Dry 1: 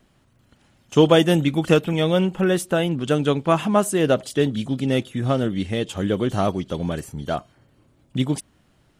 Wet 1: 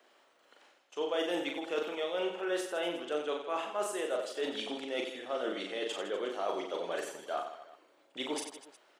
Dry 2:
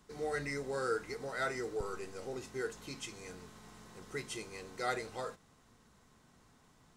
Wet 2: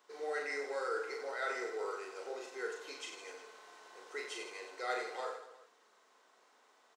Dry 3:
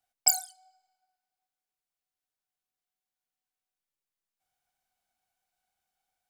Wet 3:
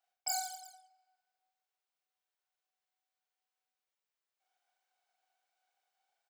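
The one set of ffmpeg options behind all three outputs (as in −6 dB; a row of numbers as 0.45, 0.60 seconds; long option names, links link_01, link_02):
-af "highpass=frequency=420:width=0.5412,highpass=frequency=420:width=1.3066,equalizer=frequency=12000:width_type=o:width=1.1:gain=-12,areverse,acompressor=threshold=-34dB:ratio=5,areverse,aecho=1:1:40|92|159.6|247.5|361.7:0.631|0.398|0.251|0.158|0.1"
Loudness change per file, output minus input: −14.5, −1.0, −10.5 LU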